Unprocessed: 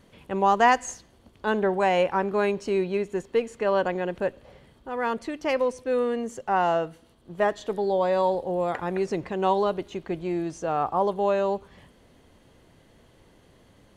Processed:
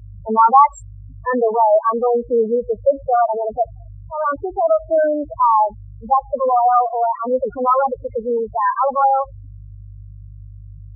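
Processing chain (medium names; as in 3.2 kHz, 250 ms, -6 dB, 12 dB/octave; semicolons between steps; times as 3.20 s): gliding tape speed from 113% -> 142%; peaking EQ 1.3 kHz +10 dB 2.6 oct; hum 50 Hz, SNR 21 dB; loudest bins only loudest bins 4; high-pass 76 Hz; bass shelf 360 Hz +10 dB; trim +1 dB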